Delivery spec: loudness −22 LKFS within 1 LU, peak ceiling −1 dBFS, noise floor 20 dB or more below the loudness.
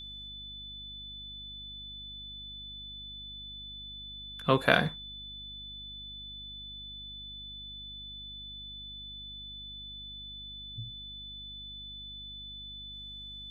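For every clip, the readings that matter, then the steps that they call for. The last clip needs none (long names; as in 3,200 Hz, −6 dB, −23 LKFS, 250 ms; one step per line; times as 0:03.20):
mains hum 50 Hz; hum harmonics up to 250 Hz; level of the hum −49 dBFS; interfering tone 3,500 Hz; level of the tone −42 dBFS; integrated loudness −37.5 LKFS; sample peak −3.5 dBFS; target loudness −22.0 LKFS
→ hum removal 50 Hz, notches 5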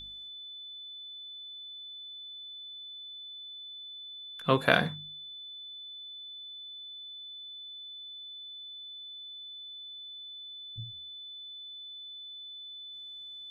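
mains hum none found; interfering tone 3,500 Hz; level of the tone −42 dBFS
→ notch filter 3,500 Hz, Q 30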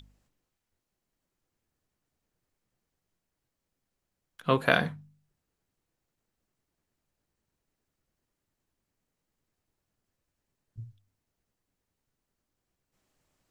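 interfering tone none found; integrated loudness −27.5 LKFS; sample peak −4.0 dBFS; target loudness −22.0 LKFS
→ level +5.5 dB
brickwall limiter −1 dBFS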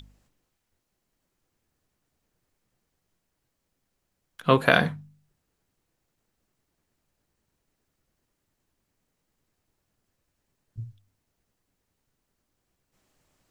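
integrated loudness −22.5 LKFS; sample peak −1.0 dBFS; background noise floor −80 dBFS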